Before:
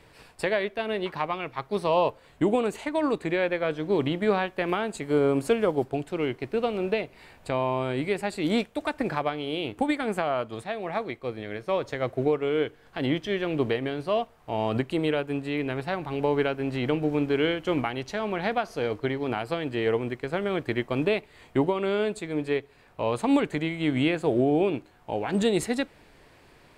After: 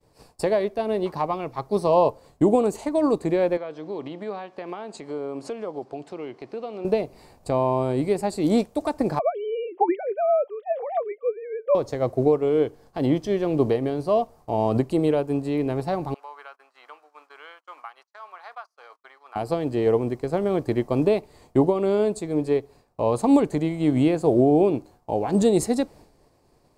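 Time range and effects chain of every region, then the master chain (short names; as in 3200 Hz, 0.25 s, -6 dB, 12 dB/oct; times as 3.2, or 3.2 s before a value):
3.57–6.85 BPF 170–3700 Hz + tilt shelf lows -5.5 dB, about 850 Hz + compressor 2:1, threshold -39 dBFS
9.19–11.75 sine-wave speech + notch 1100 Hz, Q 19
16.14–19.36 gate -34 dBFS, range -24 dB + ladder high-pass 1100 Hz, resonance 55% + tilt -1.5 dB/oct
whole clip: notch 950 Hz, Q 19; expander -47 dBFS; band shelf 2200 Hz -12.5 dB; gain +5 dB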